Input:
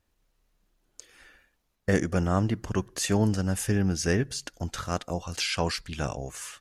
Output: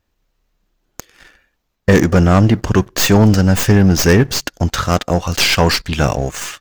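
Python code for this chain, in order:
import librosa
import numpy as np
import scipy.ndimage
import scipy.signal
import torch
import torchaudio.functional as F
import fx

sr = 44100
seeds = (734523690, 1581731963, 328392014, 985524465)

y = fx.tracing_dist(x, sr, depth_ms=0.06)
y = fx.peak_eq(y, sr, hz=10000.0, db=-11.0, octaves=0.46)
y = fx.leveller(y, sr, passes=2)
y = y * 10.0 ** (9.0 / 20.0)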